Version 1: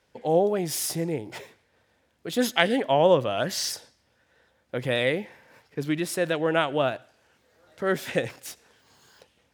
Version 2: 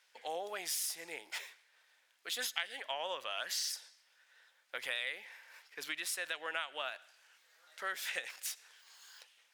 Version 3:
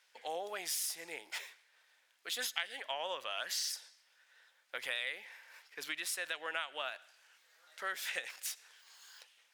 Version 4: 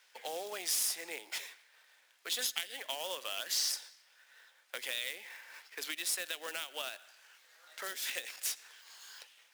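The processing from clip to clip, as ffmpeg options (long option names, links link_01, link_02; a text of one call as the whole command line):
ffmpeg -i in.wav -af "highpass=1500,acompressor=threshold=-38dB:ratio=4,volume=2dB" out.wav
ffmpeg -i in.wav -af anull out.wav
ffmpeg -i in.wav -filter_complex "[0:a]acrusher=bits=2:mode=log:mix=0:aa=0.000001,acrossover=split=460|3000[link_01][link_02][link_03];[link_02]acompressor=threshold=-48dB:ratio=6[link_04];[link_01][link_04][link_03]amix=inputs=3:normalize=0,highpass=290,volume=4.5dB" out.wav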